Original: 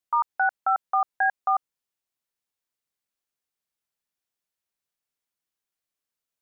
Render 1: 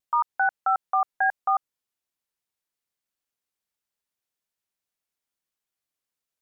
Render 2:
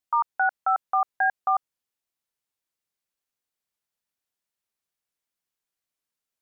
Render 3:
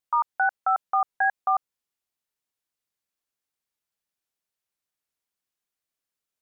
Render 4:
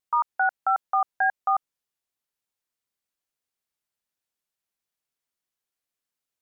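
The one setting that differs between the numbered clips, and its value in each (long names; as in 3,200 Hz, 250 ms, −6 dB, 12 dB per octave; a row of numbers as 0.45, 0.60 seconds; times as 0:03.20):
pitch vibrato, speed: 0.75, 3.8, 2.5, 1.5 Hertz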